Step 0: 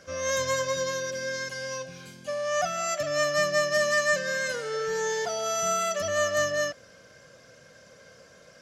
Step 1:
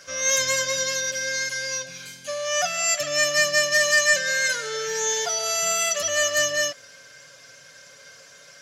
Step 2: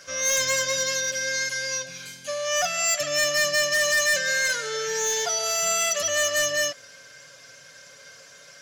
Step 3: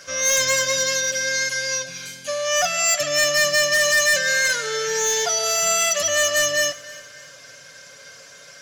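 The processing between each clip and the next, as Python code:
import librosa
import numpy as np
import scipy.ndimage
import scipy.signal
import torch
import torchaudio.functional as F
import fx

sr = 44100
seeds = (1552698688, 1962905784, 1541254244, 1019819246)

y1 = fx.tilt_shelf(x, sr, db=-8.0, hz=970.0)
y1 = y1 + 0.56 * np.pad(y1, (int(7.1 * sr / 1000.0), 0))[:len(y1)]
y1 = y1 * librosa.db_to_amplitude(1.5)
y2 = np.clip(y1, -10.0 ** (-18.5 / 20.0), 10.0 ** (-18.5 / 20.0))
y3 = fx.echo_feedback(y2, sr, ms=301, feedback_pct=37, wet_db=-19.5)
y3 = y3 * librosa.db_to_amplitude(4.0)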